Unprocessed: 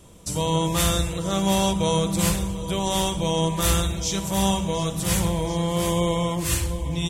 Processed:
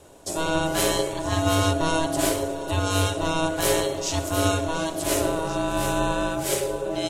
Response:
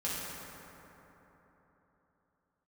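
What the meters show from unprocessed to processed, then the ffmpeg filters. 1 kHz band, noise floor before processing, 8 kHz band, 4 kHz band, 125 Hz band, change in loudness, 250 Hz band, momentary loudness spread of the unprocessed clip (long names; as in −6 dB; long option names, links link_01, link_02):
+0.5 dB, −31 dBFS, −1.5 dB, −2.0 dB, −4.0 dB, −1.0 dB, −2.5 dB, 5 LU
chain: -af "aeval=exprs='val(0)*sin(2*PI*480*n/s)':channel_layout=same,equalizer=frequency=85:width=4.2:gain=14.5,volume=1.5dB"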